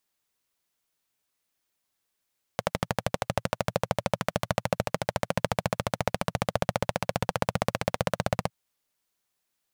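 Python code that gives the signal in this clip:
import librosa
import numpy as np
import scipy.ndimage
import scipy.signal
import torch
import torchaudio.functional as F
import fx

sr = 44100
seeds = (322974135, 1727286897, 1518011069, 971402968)

y = fx.engine_single_rev(sr, seeds[0], length_s=5.91, rpm=1500, resonances_hz=(120.0, 170.0, 550.0), end_rpm=1900)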